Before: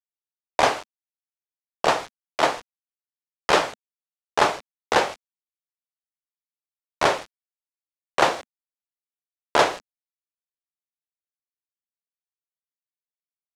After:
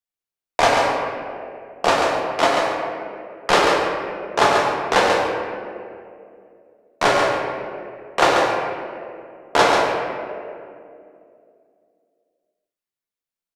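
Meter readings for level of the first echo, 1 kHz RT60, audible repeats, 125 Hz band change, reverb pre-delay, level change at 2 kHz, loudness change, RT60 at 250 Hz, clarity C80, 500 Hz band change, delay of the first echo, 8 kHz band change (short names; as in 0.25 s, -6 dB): -5.0 dB, 2.1 s, 1, +6.5 dB, 4 ms, +5.5 dB, +3.5 dB, 3.0 s, 0.5 dB, +6.5 dB, 0.139 s, +3.5 dB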